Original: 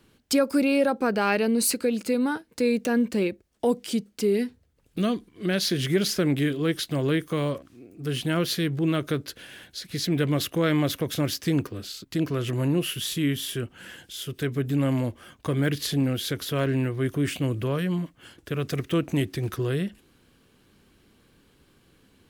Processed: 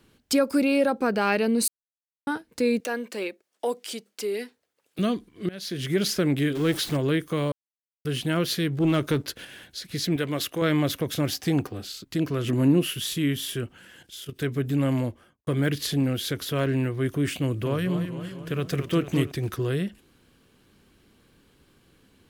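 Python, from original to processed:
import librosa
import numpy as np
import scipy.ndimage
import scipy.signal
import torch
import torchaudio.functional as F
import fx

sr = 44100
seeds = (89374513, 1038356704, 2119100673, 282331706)

y = fx.highpass(x, sr, hz=500.0, slope=12, at=(2.8, 4.99))
y = fx.zero_step(y, sr, step_db=-31.5, at=(6.55, 6.97))
y = fx.leveller(y, sr, passes=1, at=(8.8, 9.45))
y = fx.low_shelf(y, sr, hz=230.0, db=-10.5, at=(10.16, 10.62))
y = fx.peak_eq(y, sr, hz=770.0, db=15.0, octaves=0.23, at=(11.28, 11.84))
y = fx.peak_eq(y, sr, hz=250.0, db=8.5, octaves=0.77, at=(12.44, 12.88))
y = fx.level_steps(y, sr, step_db=10, at=(13.75, 14.38), fade=0.02)
y = fx.studio_fade_out(y, sr, start_s=14.99, length_s=0.48)
y = fx.echo_warbled(y, sr, ms=228, feedback_pct=59, rate_hz=2.8, cents=120, wet_db=-9, at=(17.43, 19.32))
y = fx.edit(y, sr, fx.silence(start_s=1.68, length_s=0.59),
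    fx.fade_in_from(start_s=5.49, length_s=0.55, floor_db=-21.5),
    fx.silence(start_s=7.52, length_s=0.53), tone=tone)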